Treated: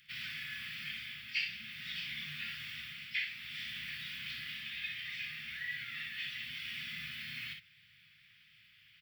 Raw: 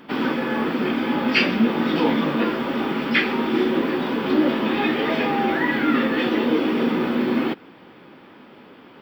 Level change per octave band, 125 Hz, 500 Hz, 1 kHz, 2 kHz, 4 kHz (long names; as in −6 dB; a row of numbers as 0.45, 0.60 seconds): −22.5 dB, below −40 dB, −36.0 dB, −13.5 dB, −10.0 dB